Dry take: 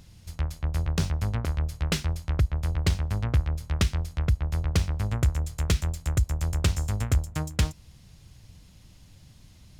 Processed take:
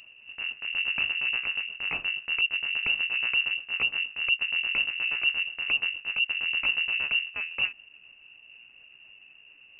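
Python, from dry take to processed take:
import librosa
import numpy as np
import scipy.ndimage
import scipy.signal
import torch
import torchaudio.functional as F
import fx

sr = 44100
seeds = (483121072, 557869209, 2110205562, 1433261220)

y = fx.pitch_ramps(x, sr, semitones=4.5, every_ms=322)
y = fx.transient(y, sr, attack_db=-7, sustain_db=-1)
y = fx.freq_invert(y, sr, carrier_hz=2800)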